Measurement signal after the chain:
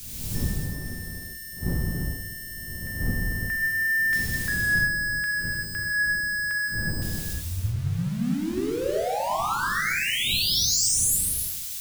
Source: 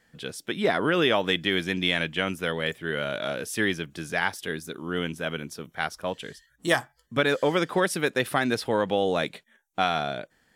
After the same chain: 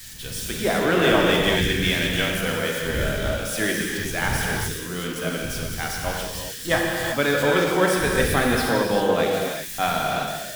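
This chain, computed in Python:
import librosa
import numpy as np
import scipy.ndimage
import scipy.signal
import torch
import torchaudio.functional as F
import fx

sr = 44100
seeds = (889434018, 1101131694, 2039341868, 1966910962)

y = x + 0.5 * 10.0 ** (-23.0 / 20.0) * np.diff(np.sign(x), prepend=np.sign(x[:1]))
y = fx.dmg_wind(y, sr, seeds[0], corner_hz=150.0, level_db=-38.0)
y = fx.high_shelf(y, sr, hz=7300.0, db=-9.5)
y = fx.rev_gated(y, sr, seeds[1], gate_ms=420, shape='flat', drr_db=-2.5)
y = fx.band_widen(y, sr, depth_pct=40)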